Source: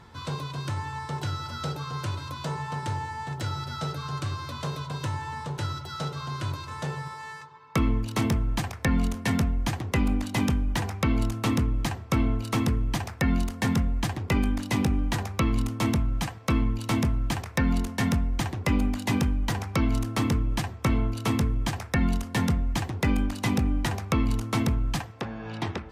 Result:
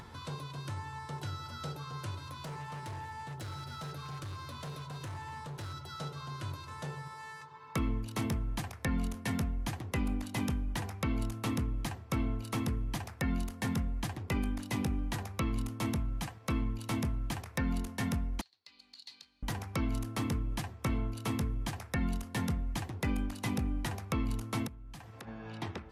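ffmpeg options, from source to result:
-filter_complex "[0:a]asettb=1/sr,asplit=3[s0][s1][s2];[s0]atrim=end=2.224[s3];[s1]atrim=start=2.22:end=5.74,asetpts=PTS-STARTPTS,afade=t=in:d=0.004:c=qsin,afade=t=out:st=3.516:d=0.004:c=qsin,asoftclip=type=hard:threshold=0.0316[s4];[s2]atrim=start=5.736[s5];[s3][s4]acrossfade=d=0.004:c1=hsin:c2=qsin[s6];[s6][s5]acrossfade=d=0.004:c1=qsin:c2=hsin,asettb=1/sr,asplit=3[s7][s8][s9];[s7]atrim=end=18.414[s10];[s8]atrim=start=18.41:end=19.43,asetpts=PTS-STARTPTS,afade=t=in:d=0.004:c=qsin,afade=t=out:st=1.016:d=0.004:c=qsin,bandpass=f=4300:t=q:w=13[s11];[s9]atrim=start=19.426[s12];[s10][s11]acrossfade=d=0.004:c1=hsin:c2=qsin[s13];[s13][s12]acrossfade=d=0.004:c1=qsin:c2=hsin,asplit=3[s14][s15][s16];[s14]afade=t=out:st=24.66:d=0.02[s17];[s15]acompressor=threshold=0.00708:ratio=3:attack=3.2:release=140:knee=1:detection=peak,afade=t=in:st=24.66:d=0.02,afade=t=out:st=25.27:d=0.02[s18];[s16]afade=t=in:st=25.27:d=0.02[s19];[s17][s18][s19]amix=inputs=3:normalize=0,equalizer=f=11000:t=o:w=0.28:g=7.5,acompressor=mode=upward:threshold=0.0251:ratio=2.5,volume=0.376"

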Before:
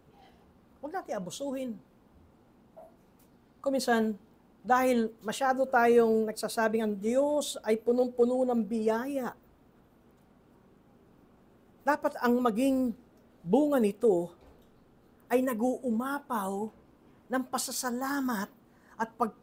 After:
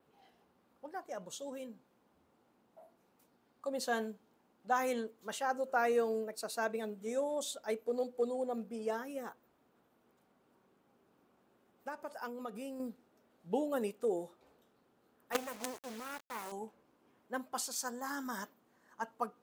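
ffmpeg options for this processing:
-filter_complex "[0:a]asettb=1/sr,asplit=3[s0][s1][s2];[s0]atrim=end=9.194[s3];[s1]atrim=start=9.19:end=12.8,asetpts=PTS-STARTPTS,afade=t=in:d=0.004:c=qsin,afade=t=out:st=3.606:d=0.004:c=qsin,acompressor=threshold=0.0316:ratio=6:attack=3.2:release=140:knee=1:detection=peak[s4];[s2]atrim=start=12.796[s5];[s3][s4]acrossfade=d=0.004:c1=hsin:c2=qsin[s6];[s6][s5]acrossfade=d=0.004:c1=qsin:c2=hsin,asettb=1/sr,asplit=3[s7][s8][s9];[s7]atrim=end=15.324[s10];[s8]atrim=start=15.32:end=16.52,asetpts=PTS-STARTPTS,afade=t=in:d=0.004:c=qsin,afade=t=out:st=1.196:d=0.004:c=qsin,acrusher=bits=4:dc=4:mix=0:aa=0.000001[s11];[s9]atrim=start=16.516[s12];[s10][s11]acrossfade=d=0.004:c1=hsin:c2=qsin[s13];[s13][s12]acrossfade=d=0.004:c1=qsin:c2=hsin,highpass=f=420:p=1,adynamicequalizer=threshold=0.00178:dfrequency=6500:dqfactor=3.3:tfrequency=6500:tqfactor=3.3:attack=5:release=100:ratio=0.375:range=2:mode=boostabove:tftype=bell,volume=0.501"

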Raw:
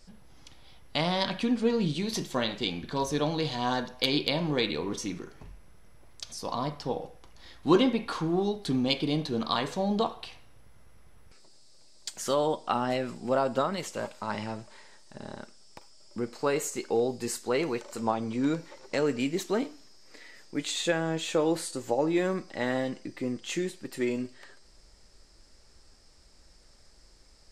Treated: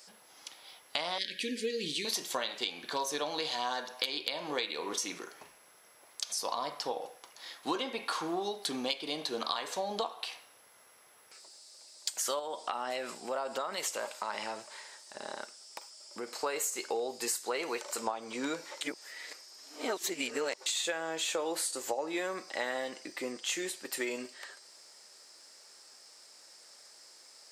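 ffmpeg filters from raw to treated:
-filter_complex "[0:a]asettb=1/sr,asplit=3[s0][s1][s2];[s0]atrim=end=1.184[s3];[s1]atrim=start=1.18:end=2.05,asetpts=PTS-STARTPTS,afade=t=in:d=0.004:c=qsin,afade=t=out:st=0.866:d=0.004:c=qsin,asuperstop=centerf=920:order=12:qfactor=0.75[s4];[s2]atrim=start=2.046[s5];[s3][s4]acrossfade=d=0.004:c1=hsin:c2=qsin[s6];[s6][s5]acrossfade=d=0.004:c1=qsin:c2=hsin,asettb=1/sr,asplit=3[s7][s8][s9];[s7]atrim=end=12.394[s10];[s8]atrim=start=12.39:end=16.39,asetpts=PTS-STARTPTS,afade=t=in:d=0.004:c=qsin,afade=t=out:st=3.996:d=0.004:c=qsin,acompressor=threshold=0.0251:ratio=2.5:attack=3.2:release=140:knee=1:detection=peak[s11];[s9]atrim=start=16.386[s12];[s10][s11]acrossfade=d=0.004:c1=hsin:c2=qsin[s13];[s13][s12]acrossfade=d=0.004:c1=qsin:c2=hsin,asplit=3[s14][s15][s16];[s14]atrim=end=18.812[s17];[s15]atrim=start=18.808:end=20.662,asetpts=PTS-STARTPTS,areverse[s18];[s16]atrim=start=20.658[s19];[s17][s18]acrossfade=d=0.004:c1=hsin:c2=hsin[s20];[s20][s19]acrossfade=d=0.004:c1=hsin:c2=hsin,highpass=570,highshelf=f=7800:g=9,acompressor=threshold=0.0178:ratio=6,volume=1.68"

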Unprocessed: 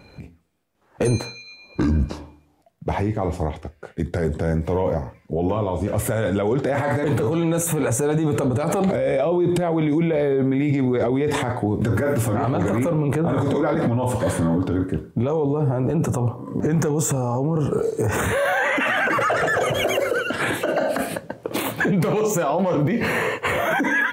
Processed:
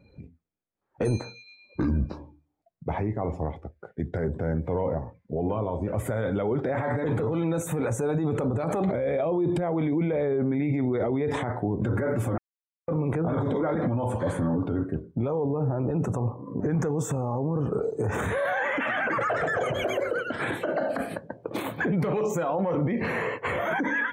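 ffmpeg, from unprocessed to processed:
-filter_complex "[0:a]asplit=3[s0][s1][s2];[s0]atrim=end=12.38,asetpts=PTS-STARTPTS,afade=t=out:st=12.376:d=0.004:c=hsin[s3];[s1]atrim=start=12.38:end=12.88,asetpts=PTS-STARTPTS,volume=0[s4];[s2]atrim=start=12.88,asetpts=PTS-STARTPTS,afade=t=in:d=0.004:c=hsin[s5];[s3][s4][s5]concat=n=3:v=0:a=1,bandreject=f=2800:w=16,afftdn=nr=14:nf=-43,highshelf=f=4300:g=-9.5,volume=0.531"

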